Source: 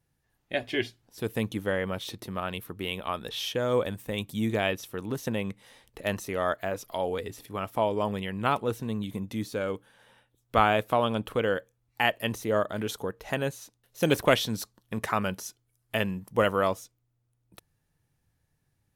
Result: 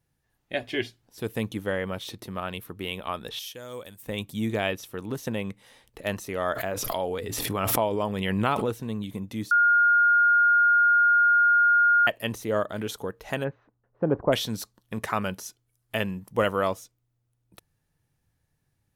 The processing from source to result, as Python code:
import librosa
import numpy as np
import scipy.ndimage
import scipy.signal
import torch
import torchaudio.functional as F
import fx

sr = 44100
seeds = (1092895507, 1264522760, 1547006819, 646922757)

y = fx.pre_emphasis(x, sr, coefficient=0.8, at=(3.39, 4.03))
y = fx.pre_swell(y, sr, db_per_s=20.0, at=(6.5, 8.66), fade=0.02)
y = fx.lowpass(y, sr, hz=fx.line((13.43, 2000.0), (14.32, 1000.0)), slope=24, at=(13.43, 14.32), fade=0.02)
y = fx.edit(y, sr, fx.bleep(start_s=9.51, length_s=2.56, hz=1420.0, db=-16.0), tone=tone)